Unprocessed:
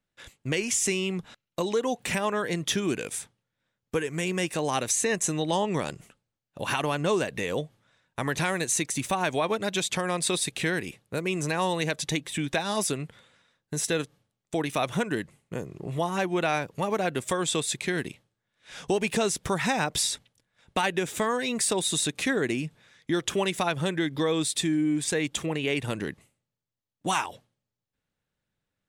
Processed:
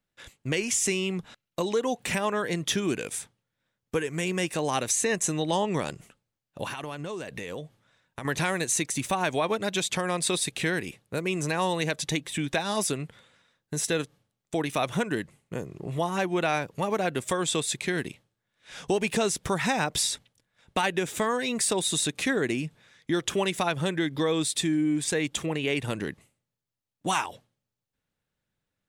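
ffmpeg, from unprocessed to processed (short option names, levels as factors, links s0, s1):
-filter_complex "[0:a]asettb=1/sr,asplit=3[s0][s1][s2];[s0]atrim=end=6.674[s3];[s1]atrim=start=6.67:end=8.25,asetpts=PTS-STARTPTS,afade=t=in:d=0.004:c=qsin,afade=t=out:st=1.576:d=0.004:c=qsin,acompressor=threshold=0.0251:ratio=6:attack=3.2:release=140:knee=1:detection=peak[s4];[s2]atrim=start=8.246[s5];[s3][s4]acrossfade=d=0.004:c1=hsin:c2=qsin[s6];[s6][s5]acrossfade=d=0.004:c1=qsin:c2=hsin"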